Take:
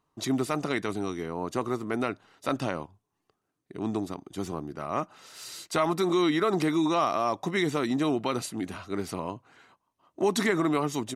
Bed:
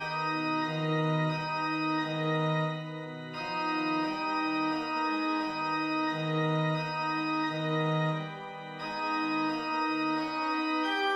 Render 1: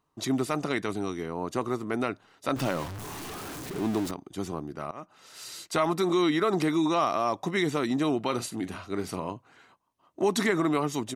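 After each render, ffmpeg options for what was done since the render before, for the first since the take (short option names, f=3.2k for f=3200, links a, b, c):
-filter_complex "[0:a]asettb=1/sr,asplit=3[a][b][c];[a]atrim=end=2.564[d];[b]atrim=start=2.56:end=4.11,asetpts=PTS-STARTPTS,afade=t=in:d=0.004:c=qsin,afade=t=out:st=1.546:d=0.004:c=qsin,aeval=exprs='val(0)+0.5*0.0251*sgn(val(0))':c=same[e];[c]atrim=start=4.106[f];[d][e]acrossfade=d=0.004:c1=hsin:c2=qsin[g];[g][f]acrossfade=d=0.004:c1=qsin:c2=hsin,asettb=1/sr,asplit=3[h][i][j];[h]atrim=end=8.234[k];[i]atrim=start=8.23:end=9.33,asetpts=PTS-STARTPTS,afade=t=in:d=0.004:c=qsin,afade=t=out:st=1.096:d=0.004:c=qsin,asplit=2[l][m];[m]adelay=43,volume=-13.5dB[n];[l][n]amix=inputs=2:normalize=0,atrim=end_sample=48510[o];[j]atrim=start=9.326[p];[k][o]acrossfade=d=0.004:c1=hsin:c2=qsin[q];[q][p]acrossfade=d=0.004:c1=qsin:c2=hsin,asplit=2[r][s];[r]atrim=end=4.91,asetpts=PTS-STARTPTS,afade=t=out:st=4.906:d=0.004:c=hsin:silence=0.0944061[t];[s]atrim=start=4.91,asetpts=PTS-STARTPTS,afade=t=in:d=0.47:silence=0.0944061[u];[t][u]concat=n=2:v=0:a=1"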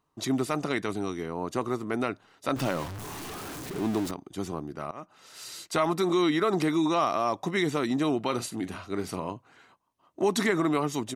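-af anull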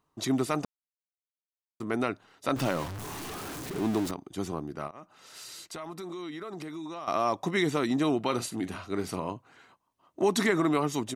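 -filter_complex "[0:a]asettb=1/sr,asplit=3[a][b][c];[a]atrim=end=4.874[d];[b]atrim=start=4.87:end=7.08,asetpts=PTS-STARTPTS,afade=t=in:d=0.004:c=qsin,afade=t=out:st=2.206:d=0.004:c=qsin,acompressor=threshold=-41dB:ratio=3:attack=3.2:release=140:knee=1:detection=peak[e];[c]atrim=start=7.076[f];[d][e]acrossfade=d=0.004:c1=hsin:c2=qsin[g];[g][f]acrossfade=d=0.004:c1=qsin:c2=hsin,asplit=3[h][i][j];[h]atrim=end=0.65,asetpts=PTS-STARTPTS,afade=t=out:st=0.646:d=0.004:c=hsin[k];[i]atrim=start=0.65:end=1.8,asetpts=PTS-STARTPTS,volume=0[l];[j]atrim=start=1.8,asetpts=PTS-STARTPTS,afade=t=in:d=0.004:c=hsin[m];[k][l][m]concat=n=3:v=0:a=1"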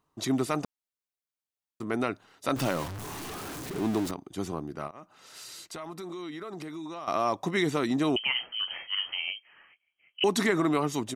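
-filter_complex "[0:a]asettb=1/sr,asplit=3[a][b][c];[a]atrim=end=2.124[d];[b]atrim=start=2.12:end=2.88,asetpts=PTS-STARTPTS,afade=t=in:d=0.004:c=qsin,afade=t=out:st=0.756:d=0.004:c=qsin,highshelf=f=5.3k:g=4[e];[c]atrim=start=2.876[f];[d][e]acrossfade=d=0.004:c1=hsin:c2=qsin[g];[g][f]acrossfade=d=0.004:c1=qsin:c2=hsin,asettb=1/sr,asplit=3[h][i][j];[h]atrim=end=8.164[k];[i]atrim=start=8.16:end=10.24,asetpts=PTS-STARTPTS,afade=t=in:d=0.004:c=qsin,afade=t=out:st=2.076:d=0.004:c=qsin,lowpass=f=2.8k:t=q:w=0.5098,lowpass=f=2.8k:t=q:w=0.6013,lowpass=f=2.8k:t=q:w=0.9,lowpass=f=2.8k:t=q:w=2.563,afreqshift=-3300[l];[j]atrim=start=10.236[m];[k][l]acrossfade=d=0.004:c1=hsin:c2=qsin[n];[n][m]acrossfade=d=0.004:c1=qsin:c2=hsin"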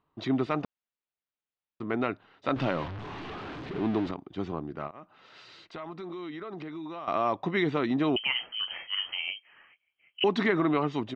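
-af "lowpass=f=3.6k:w=0.5412,lowpass=f=3.6k:w=1.3066"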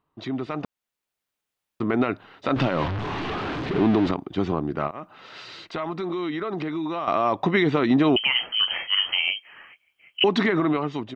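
-af "alimiter=limit=-21.5dB:level=0:latency=1:release=101,dynaudnorm=f=330:g=5:m=10.5dB"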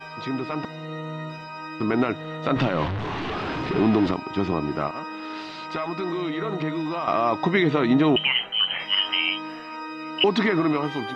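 -filter_complex "[1:a]volume=-4.5dB[a];[0:a][a]amix=inputs=2:normalize=0"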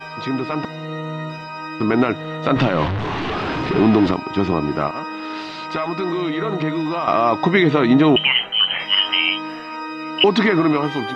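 -af "volume=5.5dB"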